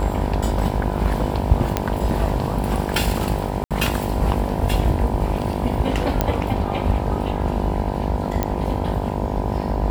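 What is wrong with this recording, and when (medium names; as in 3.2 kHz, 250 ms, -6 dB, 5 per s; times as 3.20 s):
buzz 50 Hz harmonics 20 -26 dBFS
1.77 s: pop -4 dBFS
3.64–3.71 s: dropout 67 ms
6.21 s: pop -4 dBFS
8.43 s: pop -7 dBFS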